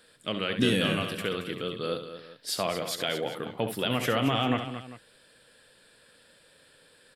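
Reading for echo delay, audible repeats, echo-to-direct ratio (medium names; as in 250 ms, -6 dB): 68 ms, 3, -6.5 dB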